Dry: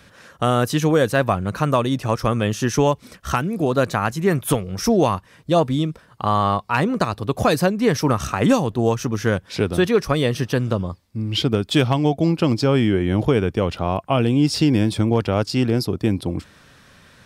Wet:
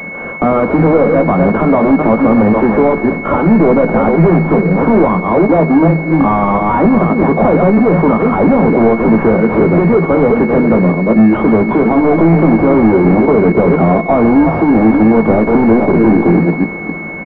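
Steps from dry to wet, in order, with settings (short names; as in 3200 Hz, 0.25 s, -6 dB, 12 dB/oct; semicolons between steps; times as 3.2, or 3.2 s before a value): reverse delay 0.26 s, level -10.5 dB; Chebyshev high-pass 160 Hz, order 10; compressor 3:1, threshold -26 dBFS, peak gain reduction 11 dB; overloaded stage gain 30 dB; doubler 18 ms -8 dB; Schroeder reverb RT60 3.8 s, combs from 25 ms, DRR 12.5 dB; maximiser +25 dB; pulse-width modulation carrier 2200 Hz; gain -1 dB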